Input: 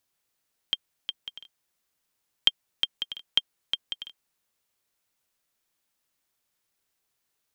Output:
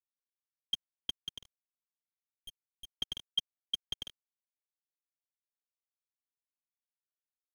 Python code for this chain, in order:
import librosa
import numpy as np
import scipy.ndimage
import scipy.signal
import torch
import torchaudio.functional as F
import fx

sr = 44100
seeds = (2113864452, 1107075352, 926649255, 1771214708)

y = fx.cvsd(x, sr, bps=32000)
y = fx.tube_stage(y, sr, drive_db=40.0, bias=0.4, at=(1.4, 2.99))
y = np.sign(y) * np.maximum(np.abs(y) - 10.0 ** (-47.5 / 20.0), 0.0)
y = F.gain(torch.from_numpy(y), 1.0).numpy()